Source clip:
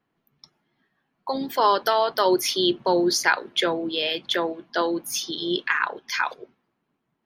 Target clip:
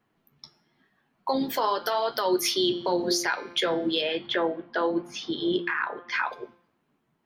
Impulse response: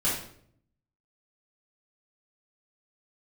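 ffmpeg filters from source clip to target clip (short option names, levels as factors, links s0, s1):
-filter_complex "[0:a]asettb=1/sr,asplit=3[s0][s1][s2];[s0]atrim=end=4.014[s3];[s1]atrim=start=4.01:end=6.33,asetpts=PTS-STARTPTS,afade=t=in:d=0.004:c=qsin,afade=t=out:st=2.316:d=0.004:c=qsin,lowpass=2300[s4];[s2]atrim=start=6.326[s5];[s3][s4]acrossfade=d=0.004:c1=hsin:c2=qsin[s6];[s6][s5]acrossfade=d=0.004:c1=qsin:c2=hsin,bandreject=f=173.9:t=h:w=4,bandreject=f=347.8:t=h:w=4,bandreject=f=521.7:t=h:w=4,bandreject=f=695.6:t=h:w=4,bandreject=f=869.5:t=h:w=4,bandreject=f=1043.4:t=h:w=4,bandreject=f=1217.3:t=h:w=4,bandreject=f=1391.2:t=h:w=4,bandreject=f=1565.1:t=h:w=4,bandreject=f=1739:t=h:w=4,bandreject=f=1912.9:t=h:w=4,bandreject=f=2086.8:t=h:w=4,bandreject=f=2260.7:t=h:w=4,bandreject=f=2434.6:t=h:w=4,bandreject=f=2608.5:t=h:w=4,bandreject=f=2782.4:t=h:w=4,bandreject=f=2956.3:t=h:w=4,bandreject=f=3130.2:t=h:w=4,bandreject=f=3304.1:t=h:w=4,bandreject=f=3478:t=h:w=4,bandreject=f=3651.9:t=h:w=4,bandreject=f=3825.8:t=h:w=4,bandreject=f=3999.7:t=h:w=4,bandreject=f=4173.6:t=h:w=4,bandreject=f=4347.5:t=h:w=4,bandreject=f=4521.4:t=h:w=4,bandreject=f=4695.3:t=h:w=4,bandreject=f=4869.2:t=h:w=4,bandreject=f=5043.1:t=h:w=4,bandreject=f=5217:t=h:w=4,bandreject=f=5390.9:t=h:w=4,bandreject=f=5564.8:t=h:w=4,bandreject=f=5738.7:t=h:w=4,alimiter=limit=0.126:level=0:latency=1:release=254,acontrast=89,flanger=delay=8.1:depth=6.2:regen=-49:speed=0.93:shape=triangular"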